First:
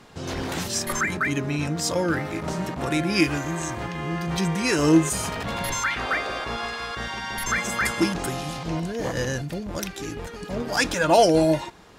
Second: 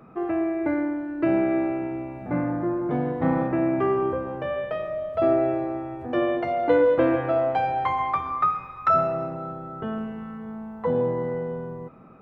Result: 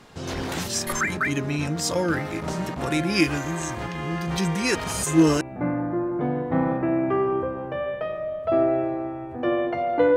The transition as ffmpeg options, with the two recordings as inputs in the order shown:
-filter_complex "[0:a]apad=whole_dur=10.16,atrim=end=10.16,asplit=2[s0][s1];[s0]atrim=end=4.752[s2];[s1]atrim=start=4.748:end=5.412,asetpts=PTS-STARTPTS,areverse[s3];[1:a]atrim=start=2.108:end=6.86[s4];[s2][s3]acrossfade=d=0.004:c1=hsin:c2=hsin[s5];[s5][s4]acrossfade=d=0.004:c1=hsin:c2=hsin"

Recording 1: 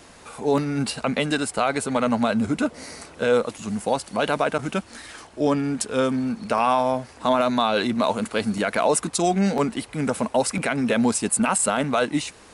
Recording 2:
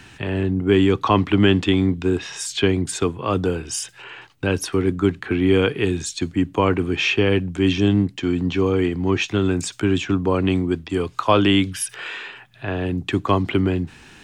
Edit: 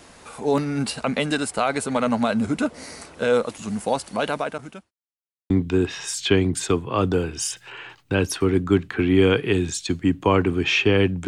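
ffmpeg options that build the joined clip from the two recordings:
-filter_complex "[0:a]apad=whole_dur=11.27,atrim=end=11.27,asplit=2[s0][s1];[s0]atrim=end=4.91,asetpts=PTS-STARTPTS,afade=t=out:st=4.12:d=0.79[s2];[s1]atrim=start=4.91:end=5.5,asetpts=PTS-STARTPTS,volume=0[s3];[1:a]atrim=start=1.82:end=7.59,asetpts=PTS-STARTPTS,afade=t=in:d=0.004:c=hsin[s4];[s2][s3][s4]concat=n=3:v=0:a=1"

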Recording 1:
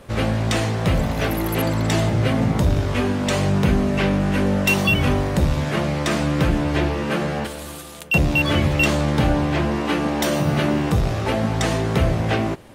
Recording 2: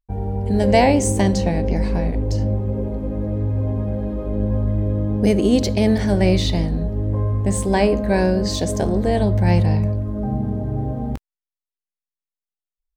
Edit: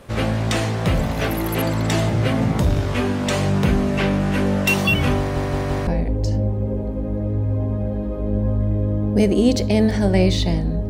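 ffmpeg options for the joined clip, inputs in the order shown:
-filter_complex "[0:a]apad=whole_dur=10.89,atrim=end=10.89,asplit=4[s0][s1][s2][s3];[s0]atrim=end=5.362[s4];[s1]atrim=start=5.188:end=5.362[s5];[s2]atrim=start=5.188:end=5.362[s6];[s3]atrim=start=5.188:end=5.362[s7];[1:a]atrim=start=1.938:end=6.96[s8];[s4][s5]acrossfade=d=0.004:c1=hsin:c2=hsin[s9];[s9][s6]acrossfade=d=0.004:c1=hsin:c2=hsin[s10];[s10][s7]acrossfade=d=0.004:c1=hsin:c2=hsin[s11];[s11][s8]acrossfade=d=0.004:c1=hsin:c2=hsin"

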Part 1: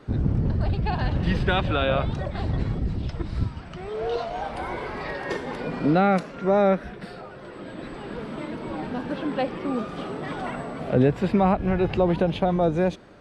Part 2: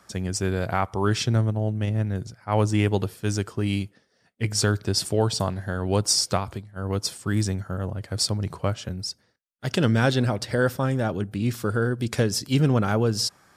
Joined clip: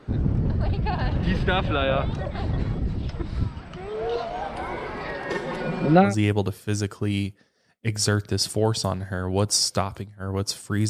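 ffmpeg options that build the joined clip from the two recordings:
-filter_complex "[0:a]asettb=1/sr,asplit=3[s0][s1][s2];[s0]atrim=end=5.344[s3];[s1]atrim=start=5.34:end=6.15,asetpts=PTS-STARTPTS,afade=t=in:d=0.004:c=qsin,afade=t=out:st=0.806:d=0.004:c=qsin,aecho=1:1:5.5:0.9,atrim=end_sample=35721[s4];[s2]atrim=start=6.146[s5];[s3][s4]acrossfade=d=0.004:c1=hsin:c2=qsin[s6];[s6][s5]acrossfade=d=0.004:c1=qsin:c2=hsin,apad=whole_dur=10.89,atrim=end=10.89,atrim=end=6.15,asetpts=PTS-STARTPTS[s7];[1:a]atrim=start=2.57:end=7.45,asetpts=PTS-STARTPTS[s8];[s7][s8]acrossfade=d=0.14:c1=tri:c2=tri"

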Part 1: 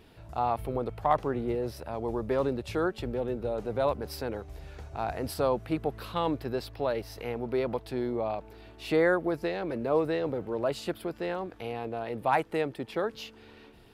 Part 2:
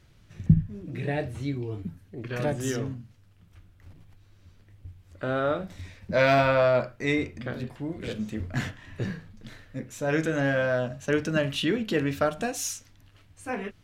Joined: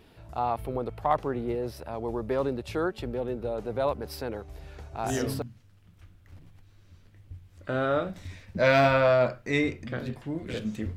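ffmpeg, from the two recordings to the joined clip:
-filter_complex "[0:a]apad=whole_dur=10.96,atrim=end=10.96,atrim=end=5.42,asetpts=PTS-STARTPTS[s0];[1:a]atrim=start=2.58:end=8.5,asetpts=PTS-STARTPTS[s1];[s0][s1]acrossfade=d=0.38:c1=log:c2=log"

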